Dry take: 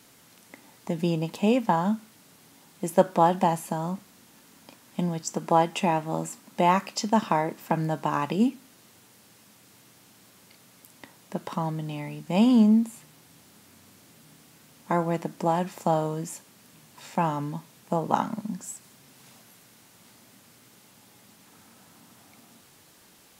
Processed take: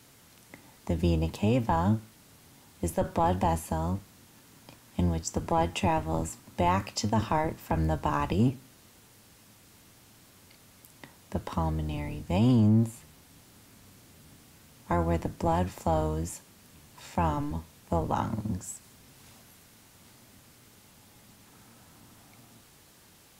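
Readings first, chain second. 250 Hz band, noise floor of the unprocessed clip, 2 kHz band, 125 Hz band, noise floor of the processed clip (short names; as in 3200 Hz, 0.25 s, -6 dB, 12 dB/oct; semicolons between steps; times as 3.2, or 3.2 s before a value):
-4.0 dB, -56 dBFS, -3.5 dB, +3.0 dB, -57 dBFS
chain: octaver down 1 oct, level 0 dB; in parallel at -10 dB: soft clip -15.5 dBFS, distortion -12 dB; on the sum: limiter -11.5 dBFS, peak gain reduction 7.5 dB; gain -4 dB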